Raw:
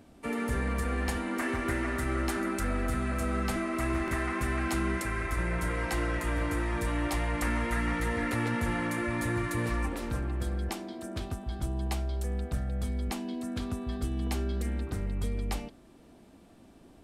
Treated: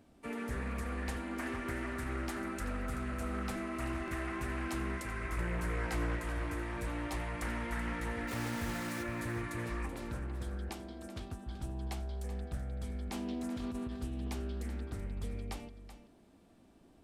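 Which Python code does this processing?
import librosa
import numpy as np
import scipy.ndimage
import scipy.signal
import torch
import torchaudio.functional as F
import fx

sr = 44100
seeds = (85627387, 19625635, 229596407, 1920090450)

y = fx.doubler(x, sr, ms=17.0, db=-6.5, at=(5.2, 6.16))
y = fx.quant_dither(y, sr, seeds[0], bits=6, dither='none', at=(8.27, 9.02), fade=0.02)
y = fx.over_compress(y, sr, threshold_db=-34.0, ratio=-0.5, at=(13.12, 13.91), fade=0.02)
y = y + 10.0 ** (-12.5 / 20.0) * np.pad(y, (int(381 * sr / 1000.0), 0))[:len(y)]
y = fx.doppler_dist(y, sr, depth_ms=0.32)
y = F.gain(torch.from_numpy(y), -7.5).numpy()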